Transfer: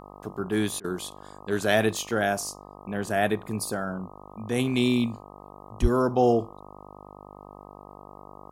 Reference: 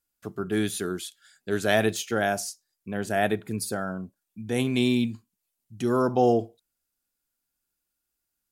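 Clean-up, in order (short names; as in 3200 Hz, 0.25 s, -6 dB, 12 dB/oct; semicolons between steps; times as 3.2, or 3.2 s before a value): de-hum 49.8 Hz, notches 25; 5.81–5.93 HPF 140 Hz 24 dB/oct; interpolate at 0.8, 41 ms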